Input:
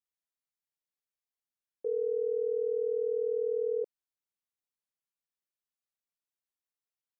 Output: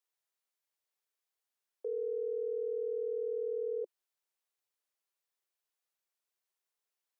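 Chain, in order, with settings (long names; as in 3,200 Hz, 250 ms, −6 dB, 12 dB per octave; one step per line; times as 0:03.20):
brickwall limiter −34.5 dBFS, peak gain reduction 10 dB
elliptic high-pass filter 360 Hz
level +5 dB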